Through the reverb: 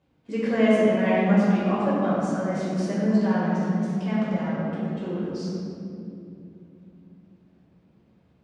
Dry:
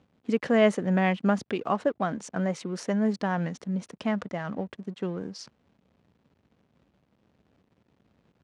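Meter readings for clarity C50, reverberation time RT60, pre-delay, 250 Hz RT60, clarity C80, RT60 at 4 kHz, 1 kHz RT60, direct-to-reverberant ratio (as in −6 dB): −3.5 dB, 2.7 s, 5 ms, 4.4 s, −1.5 dB, 1.4 s, 2.2 s, −10.5 dB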